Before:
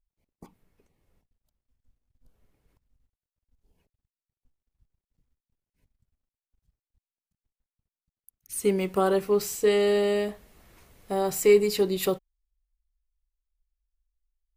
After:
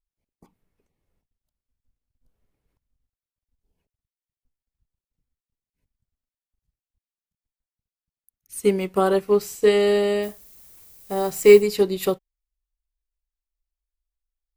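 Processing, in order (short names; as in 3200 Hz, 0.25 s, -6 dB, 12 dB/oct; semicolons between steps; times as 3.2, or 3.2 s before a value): 10.22–11.61 added noise violet -43 dBFS; upward expander 1.5:1, over -42 dBFS; gain +7.5 dB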